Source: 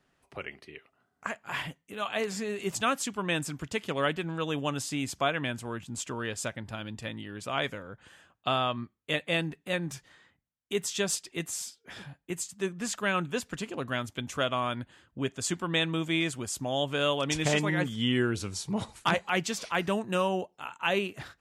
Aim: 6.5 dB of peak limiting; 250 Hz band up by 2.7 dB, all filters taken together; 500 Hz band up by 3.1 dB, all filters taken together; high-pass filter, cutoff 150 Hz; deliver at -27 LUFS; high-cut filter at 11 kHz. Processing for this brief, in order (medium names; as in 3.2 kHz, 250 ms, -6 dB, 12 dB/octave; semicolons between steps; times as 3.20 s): high-pass 150 Hz; low-pass 11 kHz; peaking EQ 250 Hz +3.5 dB; peaking EQ 500 Hz +3 dB; trim +4 dB; peak limiter -13 dBFS